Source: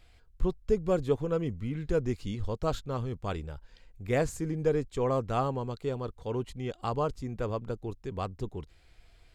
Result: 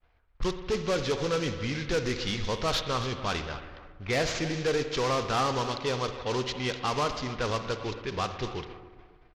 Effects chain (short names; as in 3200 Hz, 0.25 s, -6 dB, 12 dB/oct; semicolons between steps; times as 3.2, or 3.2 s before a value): CVSD 32 kbps; expander -50 dBFS; tilt shelf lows -9 dB, about 850 Hz; in parallel at +1.5 dB: limiter -25.5 dBFS, peak gain reduction 9 dB; on the sum: soft clip -24 dBFS, distortion -12 dB; on a send: feedback echo 0.272 s, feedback 37%, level -15.5 dB; on the sum: spring tank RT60 1.6 s, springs 55 ms, chirp 35 ms, DRR 8.5 dB; low-pass opened by the level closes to 890 Hz, open at -27.5 dBFS; gain +2.5 dB